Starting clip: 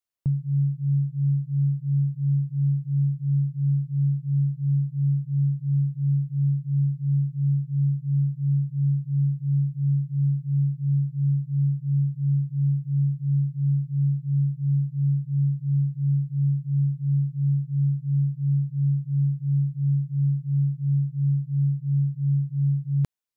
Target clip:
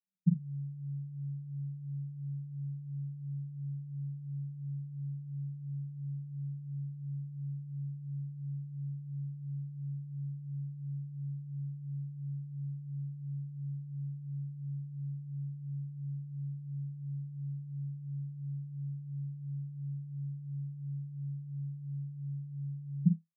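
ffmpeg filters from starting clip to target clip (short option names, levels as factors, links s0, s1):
-filter_complex "[0:a]asuperpass=centerf=180:order=8:qfactor=4.6,asplit=2[s0][s1];[s1]adelay=47,volume=0.501[s2];[s0][s2]amix=inputs=2:normalize=0,volume=5.62"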